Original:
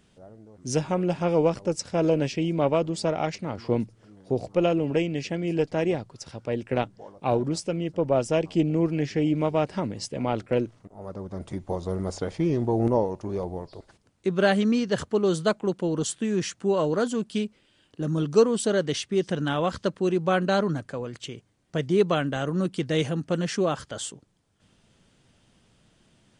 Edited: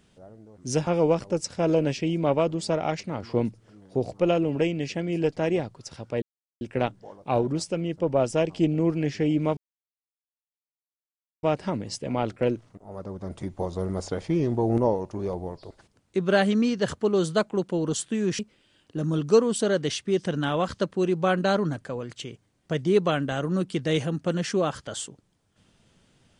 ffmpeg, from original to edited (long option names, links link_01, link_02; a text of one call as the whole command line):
ffmpeg -i in.wav -filter_complex "[0:a]asplit=5[link_01][link_02][link_03][link_04][link_05];[link_01]atrim=end=0.872[link_06];[link_02]atrim=start=1.218:end=6.57,asetpts=PTS-STARTPTS,afade=type=out:start_time=5.348:duration=0.004:curve=hsin,apad=pad_dur=0.39[link_07];[link_03]atrim=start=6.57:end=9.53,asetpts=PTS-STARTPTS,afade=type=in:duration=0.004:curve=hsin,afade=type=out:start_time=2.956:duration=0.004:curve=hsin,apad=pad_dur=1.86[link_08];[link_04]atrim=start=9.53:end=16.492,asetpts=PTS-STARTPTS,afade=type=in:duration=0.004:curve=hsin[link_09];[link_05]atrim=start=17.428[link_10];[link_07][link_08][link_09]concat=n=3:v=0:a=1[link_11];[link_06][link_11]acrossfade=duration=0.004:curve1=hsin:curve2=hsin[link_12];[link_12][link_10]acrossfade=duration=0.004:curve1=hsin:curve2=hsin" out.wav